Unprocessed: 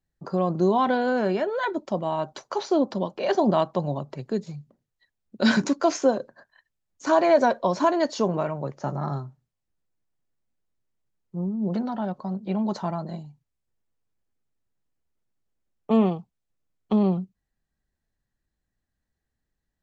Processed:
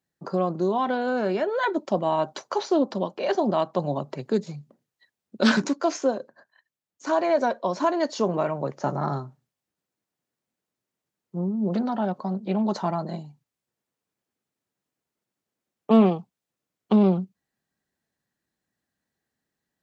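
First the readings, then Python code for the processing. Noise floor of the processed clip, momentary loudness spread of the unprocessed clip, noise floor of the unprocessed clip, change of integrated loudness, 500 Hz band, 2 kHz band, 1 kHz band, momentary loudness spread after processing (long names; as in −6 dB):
below −85 dBFS, 12 LU, −82 dBFS, 0.0 dB, −0.5 dB, −0.5 dB, −0.5 dB, 11 LU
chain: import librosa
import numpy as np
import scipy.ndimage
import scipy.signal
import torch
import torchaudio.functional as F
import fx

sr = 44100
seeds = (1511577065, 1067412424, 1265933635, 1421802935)

y = fx.rider(x, sr, range_db=4, speed_s=0.5)
y = scipy.signal.sosfilt(scipy.signal.butter(2, 170.0, 'highpass', fs=sr, output='sos'), y)
y = fx.doppler_dist(y, sr, depth_ms=0.17)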